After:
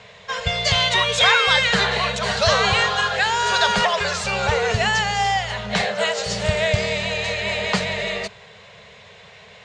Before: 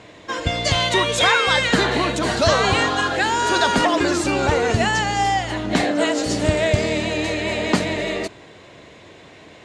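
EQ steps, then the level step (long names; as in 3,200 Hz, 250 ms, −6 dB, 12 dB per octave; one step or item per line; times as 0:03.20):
elliptic band-stop filter 210–420 Hz
high-frequency loss of the air 100 metres
high-shelf EQ 2,100 Hz +9 dB
−1.5 dB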